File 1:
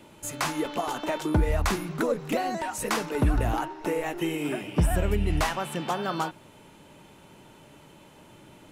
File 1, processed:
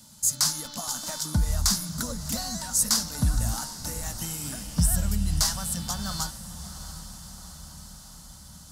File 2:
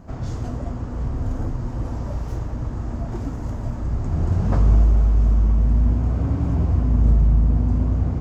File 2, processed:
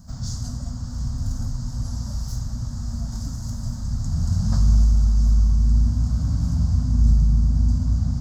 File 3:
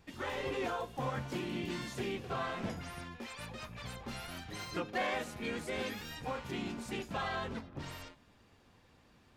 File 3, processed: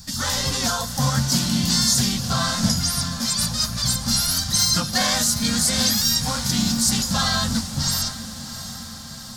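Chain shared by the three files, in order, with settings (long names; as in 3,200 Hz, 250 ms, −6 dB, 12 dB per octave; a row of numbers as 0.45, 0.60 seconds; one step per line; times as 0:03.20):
drawn EQ curve 230 Hz 0 dB, 370 Hz −26 dB, 540 Hz −13 dB, 1,500 Hz −5 dB, 2,500 Hz −14 dB, 4,800 Hz +15 dB, 10,000 Hz +12 dB
on a send: feedback delay with all-pass diffusion 717 ms, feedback 62%, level −13 dB
on the sum: normalise the peak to −6 dBFS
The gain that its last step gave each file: 0.0, −1.0, +19.5 decibels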